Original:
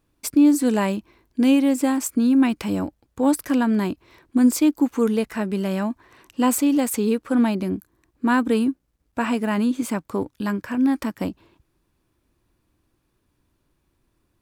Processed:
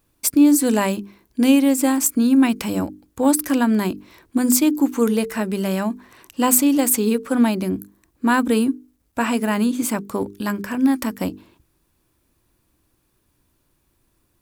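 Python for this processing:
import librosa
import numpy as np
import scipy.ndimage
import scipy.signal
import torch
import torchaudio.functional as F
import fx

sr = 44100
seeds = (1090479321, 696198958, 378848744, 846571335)

y = fx.high_shelf(x, sr, hz=7000.0, db=10.5)
y = fx.hum_notches(y, sr, base_hz=50, count=9)
y = F.gain(torch.from_numpy(y), 2.5).numpy()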